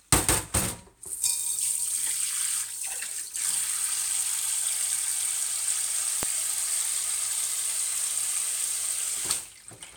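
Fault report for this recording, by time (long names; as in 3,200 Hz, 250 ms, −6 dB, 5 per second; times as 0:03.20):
0:06.23: click −9 dBFS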